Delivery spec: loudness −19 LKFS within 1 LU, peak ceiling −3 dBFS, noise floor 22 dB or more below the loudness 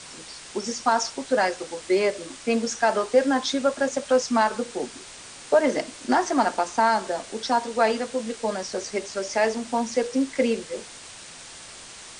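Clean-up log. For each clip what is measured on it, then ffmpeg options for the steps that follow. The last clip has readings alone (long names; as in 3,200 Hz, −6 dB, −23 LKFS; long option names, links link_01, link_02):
background noise floor −43 dBFS; target noise floor −47 dBFS; integrated loudness −24.5 LKFS; sample peak −7.5 dBFS; target loudness −19.0 LKFS
→ -af "afftdn=noise_reduction=6:noise_floor=-43"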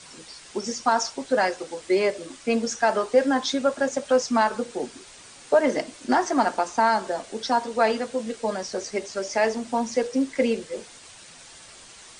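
background noise floor −47 dBFS; integrated loudness −24.5 LKFS; sample peak −7.5 dBFS; target loudness −19.0 LKFS
→ -af "volume=5.5dB,alimiter=limit=-3dB:level=0:latency=1"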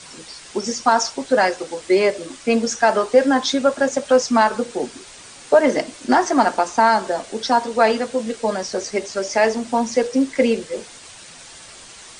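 integrated loudness −19.0 LKFS; sample peak −3.0 dBFS; background noise floor −42 dBFS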